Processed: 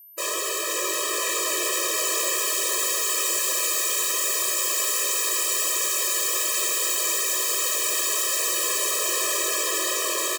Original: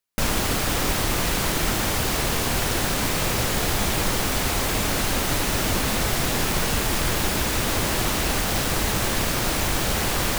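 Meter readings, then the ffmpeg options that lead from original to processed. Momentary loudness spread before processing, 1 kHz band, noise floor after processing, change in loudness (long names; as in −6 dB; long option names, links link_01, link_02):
0 LU, −5.0 dB, −27 dBFS, +1.0 dB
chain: -filter_complex "[0:a]highpass=frequency=320:poles=1,dynaudnorm=framelen=370:gausssize=11:maxgain=10dB,asplit=2[link_01][link_02];[link_02]aecho=0:1:509|1018|1527|2036|2545|3054|3563:0.562|0.309|0.17|0.0936|0.0515|0.0283|0.0156[link_03];[link_01][link_03]amix=inputs=2:normalize=0,flanger=delay=18.5:depth=2.6:speed=2.6,aeval=exprs='0.0841*(abs(mod(val(0)/0.0841+3,4)-2)-1)':channel_layout=same,equalizer=frequency=7400:width_type=o:width=0.28:gain=10,aeval=exprs='val(0)+0.00355*sin(2*PI*13000*n/s)':channel_layout=same,afftfilt=real='re*eq(mod(floor(b*sr/1024/330),2),1)':imag='im*eq(mod(floor(b*sr/1024/330),2),1)':win_size=1024:overlap=0.75,volume=3.5dB"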